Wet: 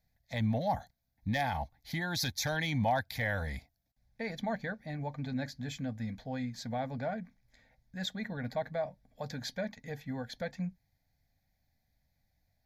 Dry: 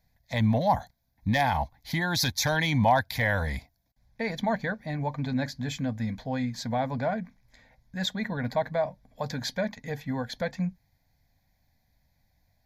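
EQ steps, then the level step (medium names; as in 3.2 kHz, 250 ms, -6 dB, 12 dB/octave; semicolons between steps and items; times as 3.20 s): band-stop 1 kHz, Q 5.3; -7.0 dB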